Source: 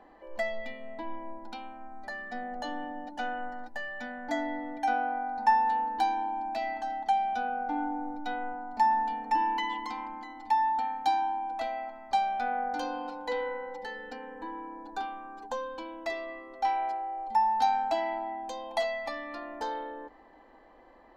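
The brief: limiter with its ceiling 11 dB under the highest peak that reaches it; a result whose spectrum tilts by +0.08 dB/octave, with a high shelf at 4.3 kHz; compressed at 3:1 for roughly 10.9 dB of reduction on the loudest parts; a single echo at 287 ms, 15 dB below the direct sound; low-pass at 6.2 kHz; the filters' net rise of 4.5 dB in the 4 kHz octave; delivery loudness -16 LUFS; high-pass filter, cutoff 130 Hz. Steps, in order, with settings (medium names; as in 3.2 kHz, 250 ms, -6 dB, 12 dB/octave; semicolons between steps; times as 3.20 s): high-pass 130 Hz; low-pass 6.2 kHz; peaking EQ 4 kHz +9 dB; treble shelf 4.3 kHz -5.5 dB; compression 3:1, threshold -35 dBFS; peak limiter -33 dBFS; delay 287 ms -15 dB; trim +25 dB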